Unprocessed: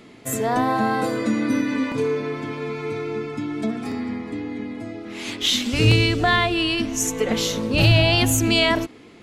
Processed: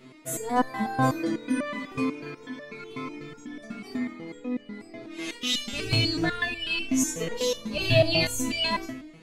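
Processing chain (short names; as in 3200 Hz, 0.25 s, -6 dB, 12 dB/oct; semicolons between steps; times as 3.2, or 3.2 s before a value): on a send at -8 dB: reverb RT60 0.75 s, pre-delay 3 ms; on the sum: stepped resonator 8.1 Hz 130–590 Hz; gain +7 dB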